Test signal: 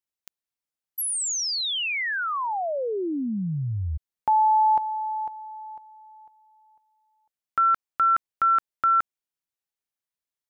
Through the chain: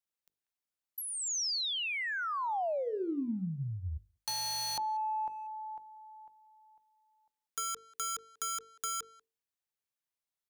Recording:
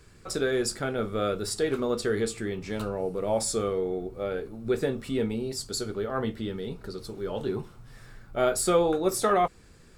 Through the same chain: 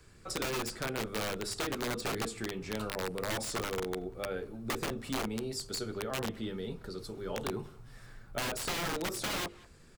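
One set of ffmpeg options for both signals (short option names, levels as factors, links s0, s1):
-filter_complex "[0:a]aeval=exprs='(mod(11.9*val(0)+1,2)-1)/11.9':c=same,asplit=2[s0][s1];[s1]adelay=190,highpass=300,lowpass=3400,asoftclip=type=hard:threshold=0.0299,volume=0.0794[s2];[s0][s2]amix=inputs=2:normalize=0,acrossover=split=290|630|6100[s3][s4][s5][s6];[s3]acompressor=threshold=0.0224:ratio=4[s7];[s4]acompressor=threshold=0.0158:ratio=4[s8];[s5]acompressor=threshold=0.0251:ratio=4[s9];[s6]acompressor=threshold=0.0112:ratio=4[s10];[s7][s8][s9][s10]amix=inputs=4:normalize=0,bandreject=f=50:t=h:w=6,bandreject=f=100:t=h:w=6,bandreject=f=150:t=h:w=6,bandreject=f=200:t=h:w=6,bandreject=f=250:t=h:w=6,bandreject=f=300:t=h:w=6,bandreject=f=350:t=h:w=6,bandreject=f=400:t=h:w=6,bandreject=f=450:t=h:w=6,bandreject=f=500:t=h:w=6,volume=0.708"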